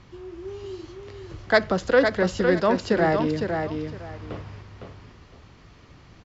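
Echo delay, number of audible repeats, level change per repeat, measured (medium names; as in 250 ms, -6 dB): 508 ms, 2, -13.0 dB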